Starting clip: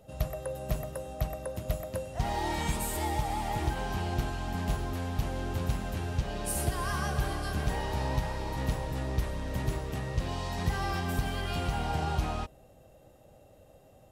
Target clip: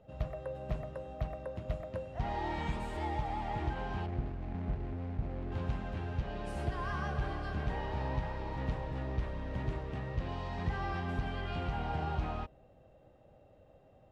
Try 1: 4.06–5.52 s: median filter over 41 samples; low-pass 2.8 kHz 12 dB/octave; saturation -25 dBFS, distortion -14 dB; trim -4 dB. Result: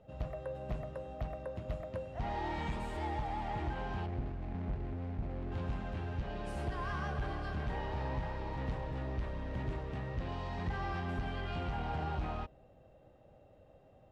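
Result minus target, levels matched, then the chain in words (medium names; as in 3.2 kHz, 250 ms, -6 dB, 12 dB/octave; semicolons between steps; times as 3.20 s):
saturation: distortion +13 dB
4.06–5.52 s: median filter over 41 samples; low-pass 2.8 kHz 12 dB/octave; saturation -15.5 dBFS, distortion -27 dB; trim -4 dB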